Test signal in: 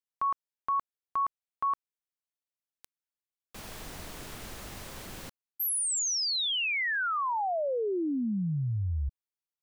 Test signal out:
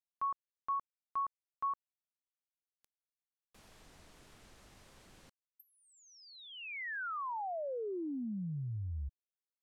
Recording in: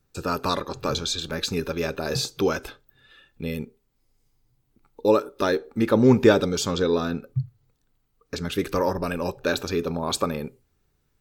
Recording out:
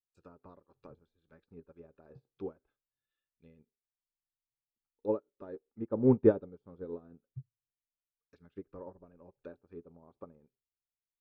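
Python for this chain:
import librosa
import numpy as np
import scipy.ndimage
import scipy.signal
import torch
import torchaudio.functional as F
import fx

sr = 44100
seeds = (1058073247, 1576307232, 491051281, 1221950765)

y = fx.env_lowpass_down(x, sr, base_hz=780.0, full_db=-23.0)
y = fx.upward_expand(y, sr, threshold_db=-35.0, expansion=2.5)
y = F.gain(torch.from_numpy(y), -5.0).numpy()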